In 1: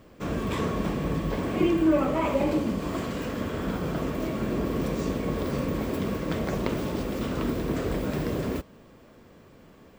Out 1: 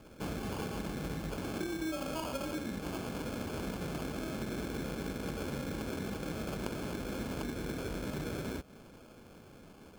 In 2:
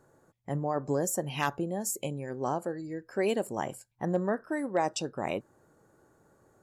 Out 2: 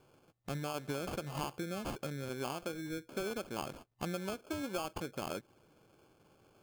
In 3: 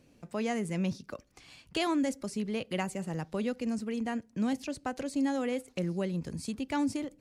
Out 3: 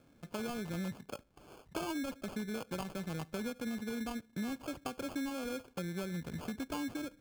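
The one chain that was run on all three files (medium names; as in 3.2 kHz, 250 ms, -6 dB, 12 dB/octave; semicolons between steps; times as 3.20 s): compression 6:1, threshold -33 dBFS; sample-and-hold 23×; trim -2 dB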